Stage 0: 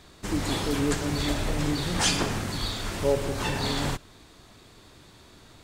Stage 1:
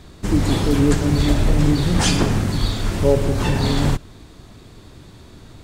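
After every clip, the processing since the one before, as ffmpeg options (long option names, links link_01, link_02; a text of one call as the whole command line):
ffmpeg -i in.wav -af "lowshelf=frequency=390:gain=10.5,volume=3dB" out.wav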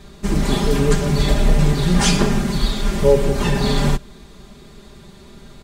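ffmpeg -i in.wav -af "aecho=1:1:5:0.89,volume=-1dB" out.wav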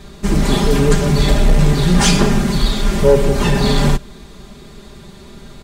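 ffmpeg -i in.wav -af "acontrast=37,volume=-1dB" out.wav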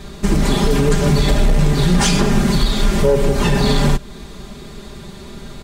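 ffmpeg -i in.wav -af "alimiter=limit=-9.5dB:level=0:latency=1:release=252,volume=3.5dB" out.wav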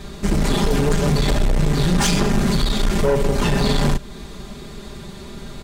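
ffmpeg -i in.wav -af "aeval=exprs='(tanh(3.98*val(0)+0.3)-tanh(0.3))/3.98':channel_layout=same" out.wav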